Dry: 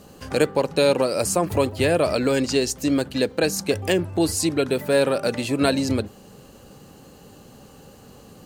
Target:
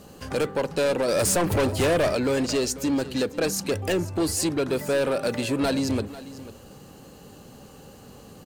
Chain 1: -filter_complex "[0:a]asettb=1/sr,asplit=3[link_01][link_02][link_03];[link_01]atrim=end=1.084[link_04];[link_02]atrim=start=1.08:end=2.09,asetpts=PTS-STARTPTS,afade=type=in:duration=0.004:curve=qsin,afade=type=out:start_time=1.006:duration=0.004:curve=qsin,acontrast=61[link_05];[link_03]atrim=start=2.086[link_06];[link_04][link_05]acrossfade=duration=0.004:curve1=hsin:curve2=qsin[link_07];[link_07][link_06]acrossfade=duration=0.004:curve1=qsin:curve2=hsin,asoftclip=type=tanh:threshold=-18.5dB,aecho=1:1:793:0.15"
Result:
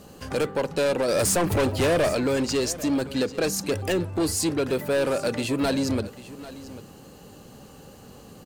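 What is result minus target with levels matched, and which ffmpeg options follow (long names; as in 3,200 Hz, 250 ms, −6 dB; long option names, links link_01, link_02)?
echo 299 ms late
-filter_complex "[0:a]asettb=1/sr,asplit=3[link_01][link_02][link_03];[link_01]atrim=end=1.084[link_04];[link_02]atrim=start=1.08:end=2.09,asetpts=PTS-STARTPTS,afade=type=in:duration=0.004:curve=qsin,afade=type=out:start_time=1.006:duration=0.004:curve=qsin,acontrast=61[link_05];[link_03]atrim=start=2.086[link_06];[link_04][link_05]acrossfade=duration=0.004:curve1=hsin:curve2=qsin[link_07];[link_07][link_06]acrossfade=duration=0.004:curve1=qsin:curve2=hsin,asoftclip=type=tanh:threshold=-18.5dB,aecho=1:1:494:0.15"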